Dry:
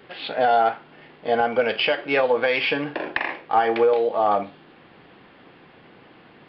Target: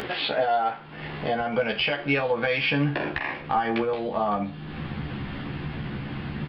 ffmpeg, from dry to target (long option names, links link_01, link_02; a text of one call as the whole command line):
ffmpeg -i in.wav -filter_complex "[0:a]asubboost=boost=9:cutoff=160,acompressor=mode=upward:threshold=-23dB:ratio=2.5,alimiter=limit=-12.5dB:level=0:latency=1:release=243,acompressor=threshold=-22dB:ratio=6,asplit=2[link_01][link_02];[link_02]adelay=14,volume=-3dB[link_03];[link_01][link_03]amix=inputs=2:normalize=0" out.wav